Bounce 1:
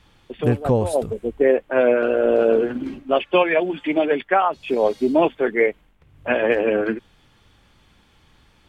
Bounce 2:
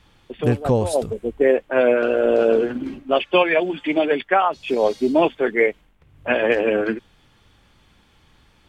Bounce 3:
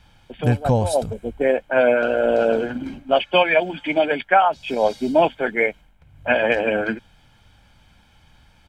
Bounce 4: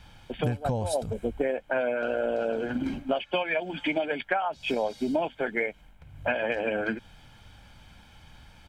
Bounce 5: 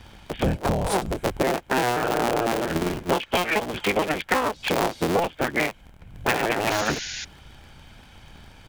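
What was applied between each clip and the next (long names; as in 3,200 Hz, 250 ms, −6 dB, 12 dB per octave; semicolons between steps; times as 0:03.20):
dynamic equaliser 5,500 Hz, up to +8 dB, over −44 dBFS, Q 0.84
comb filter 1.3 ms, depth 54%
downward compressor 12 to 1, threshold −26 dBFS, peak gain reduction 16.5 dB; level +2 dB
sub-harmonics by changed cycles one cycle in 3, inverted; sound drawn into the spectrogram noise, 0:06.70–0:07.25, 1,400–7,100 Hz −38 dBFS; level +4.5 dB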